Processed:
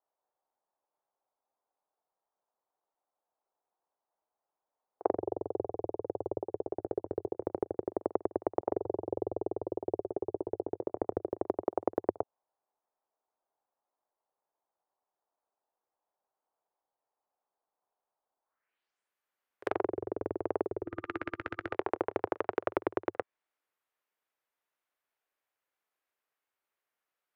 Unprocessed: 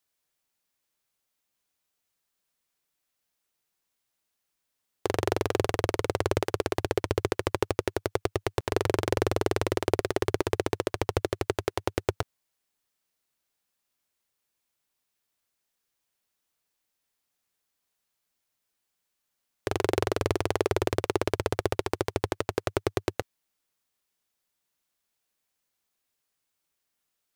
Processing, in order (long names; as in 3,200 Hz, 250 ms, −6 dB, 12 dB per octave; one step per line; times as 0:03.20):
low-pass filter sweep 830 Hz → 14,000 Hz, 0:18.43–0:19.14
gain on a spectral selection 0:20.85–0:21.73, 350–1,200 Hz −15 dB
treble cut that deepens with the level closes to 310 Hz, closed at −22.5 dBFS
three-way crossover with the lows and the highs turned down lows −18 dB, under 340 Hz, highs −17 dB, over 2,500 Hz
on a send: backwards echo 47 ms −20 dB